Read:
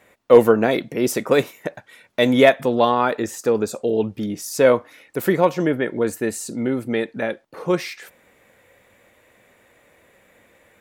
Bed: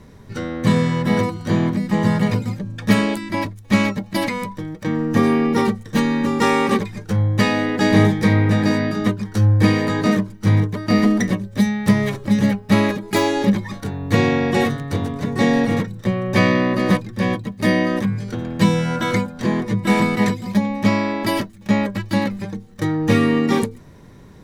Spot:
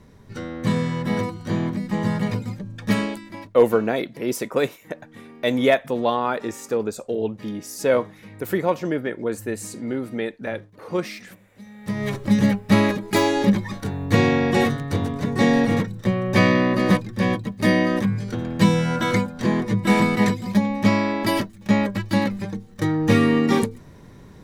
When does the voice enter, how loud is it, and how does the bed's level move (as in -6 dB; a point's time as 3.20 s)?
3.25 s, -4.5 dB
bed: 3.03 s -5.5 dB
3.87 s -28 dB
11.60 s -28 dB
12.13 s -1 dB